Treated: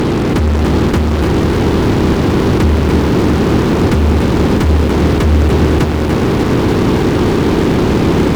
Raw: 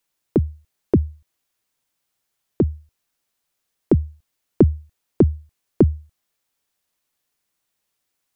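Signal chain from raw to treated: spectral levelling over time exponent 0.2; fuzz box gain 33 dB, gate -37 dBFS; peaking EQ 650 Hz -4.5 dB 0.48 oct; bit-crushed delay 298 ms, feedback 80%, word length 7-bit, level -7 dB; trim +2.5 dB

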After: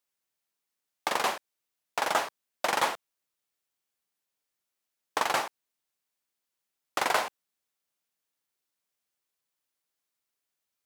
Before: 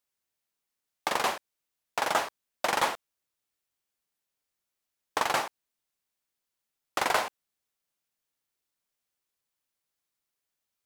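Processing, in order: bass shelf 87 Hz -10.5 dB

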